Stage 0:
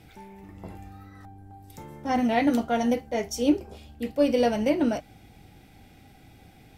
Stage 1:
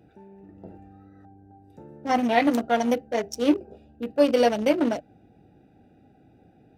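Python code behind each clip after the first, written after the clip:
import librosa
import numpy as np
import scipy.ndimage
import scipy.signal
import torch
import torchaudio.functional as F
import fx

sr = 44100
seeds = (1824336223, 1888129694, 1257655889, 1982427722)

y = fx.wiener(x, sr, points=41)
y = fx.highpass(y, sr, hz=420.0, slope=6)
y = y * librosa.db_to_amplitude(6.0)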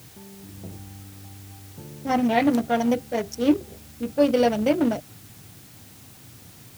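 y = fx.peak_eq(x, sr, hz=110.0, db=14.5, octaves=1.4)
y = fx.quant_dither(y, sr, seeds[0], bits=8, dither='triangular')
y = y * librosa.db_to_amplitude(-1.5)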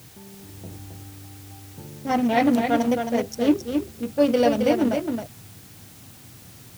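y = x + 10.0 ** (-5.5 / 20.0) * np.pad(x, (int(268 * sr / 1000.0), 0))[:len(x)]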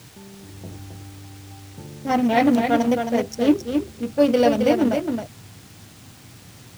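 y = scipy.signal.medfilt(x, 3)
y = y * librosa.db_to_amplitude(2.0)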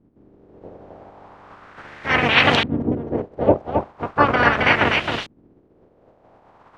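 y = fx.spec_clip(x, sr, under_db=29)
y = fx.filter_lfo_lowpass(y, sr, shape='saw_up', hz=0.38, low_hz=250.0, high_hz=3500.0, q=2.1)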